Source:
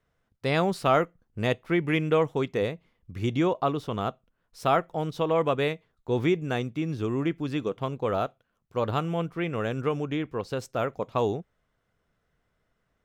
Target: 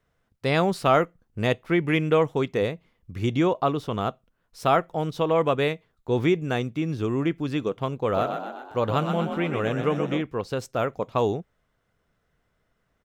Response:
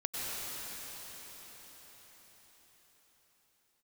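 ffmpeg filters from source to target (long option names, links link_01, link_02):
-filter_complex "[0:a]asplit=3[link_01][link_02][link_03];[link_01]afade=type=out:start_time=8.15:duration=0.02[link_04];[link_02]asplit=8[link_05][link_06][link_07][link_08][link_09][link_10][link_11][link_12];[link_06]adelay=126,afreqshift=44,volume=-7dB[link_13];[link_07]adelay=252,afreqshift=88,volume=-11.7dB[link_14];[link_08]adelay=378,afreqshift=132,volume=-16.5dB[link_15];[link_09]adelay=504,afreqshift=176,volume=-21.2dB[link_16];[link_10]adelay=630,afreqshift=220,volume=-25.9dB[link_17];[link_11]adelay=756,afreqshift=264,volume=-30.7dB[link_18];[link_12]adelay=882,afreqshift=308,volume=-35.4dB[link_19];[link_05][link_13][link_14][link_15][link_16][link_17][link_18][link_19]amix=inputs=8:normalize=0,afade=type=in:start_time=8.15:duration=0.02,afade=type=out:start_time=10.21:duration=0.02[link_20];[link_03]afade=type=in:start_time=10.21:duration=0.02[link_21];[link_04][link_20][link_21]amix=inputs=3:normalize=0,volume=2.5dB"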